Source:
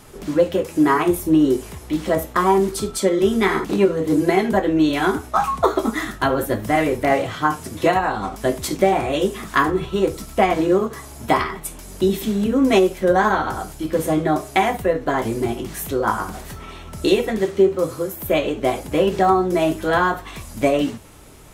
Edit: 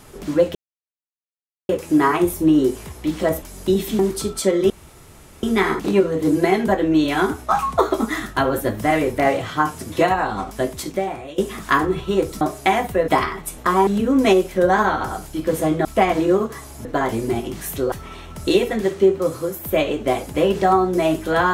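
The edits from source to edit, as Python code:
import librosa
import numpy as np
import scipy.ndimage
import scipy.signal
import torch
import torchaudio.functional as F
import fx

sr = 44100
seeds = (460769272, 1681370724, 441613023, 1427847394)

y = fx.edit(x, sr, fx.insert_silence(at_s=0.55, length_s=1.14),
    fx.swap(start_s=2.28, length_s=0.29, other_s=11.76, other_length_s=0.57),
    fx.insert_room_tone(at_s=3.28, length_s=0.73),
    fx.fade_out_to(start_s=8.25, length_s=0.98, floor_db=-17.5),
    fx.swap(start_s=10.26, length_s=1.0, other_s=14.31, other_length_s=0.67),
    fx.cut(start_s=16.05, length_s=0.44), tone=tone)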